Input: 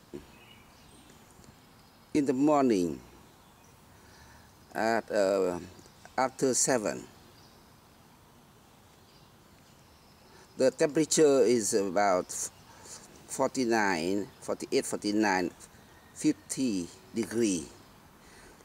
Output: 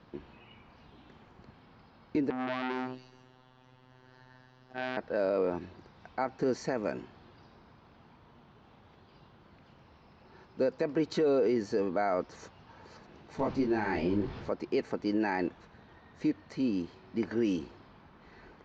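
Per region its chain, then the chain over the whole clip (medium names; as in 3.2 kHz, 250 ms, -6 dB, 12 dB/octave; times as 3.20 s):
2.30–4.97 s: robot voice 128 Hz + repeats whose band climbs or falls 132 ms, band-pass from 2.9 kHz, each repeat 0.7 oct, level -1.5 dB + transformer saturation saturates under 2.5 kHz
13.37–14.49 s: jump at every zero crossing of -36.5 dBFS + bass shelf 170 Hz +12 dB + detune thickener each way 42 cents
whole clip: Bessel low-pass 2.8 kHz, order 8; peak limiter -20 dBFS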